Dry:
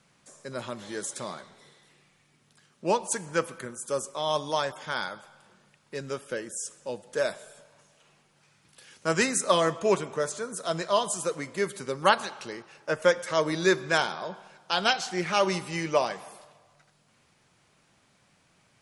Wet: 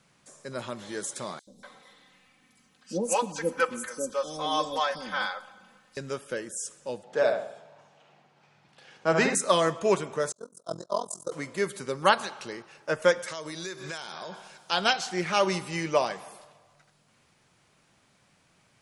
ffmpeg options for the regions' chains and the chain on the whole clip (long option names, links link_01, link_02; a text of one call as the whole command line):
ffmpeg -i in.wav -filter_complex "[0:a]asettb=1/sr,asplit=3[link_01][link_02][link_03];[link_01]atrim=end=1.394[link_04];[link_02]atrim=start=1.39:end=5.97,asetpts=PTS-STARTPTS,afade=type=in:duration=0.004:curve=qsin,afade=type=out:start_time=4.576:duration=0.004:curve=qsin,equalizer=frequency=8800:width_type=o:width=0.23:gain=-6,aecho=1:1:3.9:0.93,atrim=end_sample=201978,acrossover=split=490|5100[link_05][link_06][link_07];[link_05]adelay=80[link_08];[link_06]adelay=240[link_09];[link_08][link_09][link_07]amix=inputs=3:normalize=0,atrim=end_sample=201978[link_10];[link_03]atrim=start=5.966[link_11];[link_04][link_10]acrossfade=duration=0.004:curve1=hsin:curve2=qsin[link_12];[link_12][link_11]acrossfade=duration=0.004:curve1=qsin:curve2=hsin,asettb=1/sr,asplit=3[link_13][link_14][link_15];[link_13]atrim=end=7.034[link_16];[link_14]atrim=start=7.03:end=9.35,asetpts=PTS-STARTPTS,afade=type=in:duration=0.004:curve=qsin,afade=type=out:start_time=2.316:duration=0.004:curve=qsin,highpass=110,lowpass=4300,equalizer=frequency=750:width=3.3:gain=9.5,asplit=2[link_17][link_18];[link_18]adelay=67,lowpass=frequency=1700:poles=1,volume=-3.5dB,asplit=2[link_19][link_20];[link_20]adelay=67,lowpass=frequency=1700:poles=1,volume=0.44,asplit=2[link_21][link_22];[link_22]adelay=67,lowpass=frequency=1700:poles=1,volume=0.44,asplit=2[link_23][link_24];[link_24]adelay=67,lowpass=frequency=1700:poles=1,volume=0.44,asplit=2[link_25][link_26];[link_26]adelay=67,lowpass=frequency=1700:poles=1,volume=0.44,asplit=2[link_27][link_28];[link_28]adelay=67,lowpass=frequency=1700:poles=1,volume=0.44[link_29];[link_17][link_19][link_21][link_23][link_25][link_27][link_29]amix=inputs=7:normalize=0,atrim=end_sample=102312[link_30];[link_15]atrim=start=9.346[link_31];[link_16][link_30]acrossfade=duration=0.004:curve1=hsin:curve2=qsin[link_32];[link_32][link_31]acrossfade=duration=0.004:curve1=qsin:curve2=hsin,asettb=1/sr,asplit=3[link_33][link_34][link_35];[link_33]atrim=end=10.324[link_36];[link_34]atrim=start=10.32:end=11.32,asetpts=PTS-STARTPTS,afade=type=in:duration=0.004:curve=qsin,afade=type=out:start_time=0.996:duration=0.004:curve=qsin,agate=range=-33dB:threshold=-28dB:ratio=3:release=100:detection=peak,tremolo=f=43:d=0.974,asuperstop=centerf=2300:order=4:qfactor=0.68[link_37];[link_35]atrim=start=11.316[link_38];[link_36][link_37]acrossfade=duration=0.004:curve1=hsin:curve2=qsin[link_39];[link_39][link_38]acrossfade=duration=0.004:curve1=qsin:curve2=hsin,asettb=1/sr,asplit=3[link_40][link_41][link_42];[link_40]atrim=end=13.284[link_43];[link_41]atrim=start=13.28:end=14.71,asetpts=PTS-STARTPTS,afade=type=in:duration=0.004:curve=qsin,afade=type=out:start_time=1.426:duration=0.004:curve=qsin,equalizer=frequency=10000:width_type=o:width=2.9:gain=10.5,acompressor=threshold=-34dB:ratio=6:attack=3.2:release=140:knee=1:detection=peak[link_44];[link_42]atrim=start=14.706[link_45];[link_43][link_44]acrossfade=duration=0.004:curve1=hsin:curve2=qsin[link_46];[link_46][link_45]acrossfade=duration=0.004:curve1=qsin:curve2=hsin" out.wav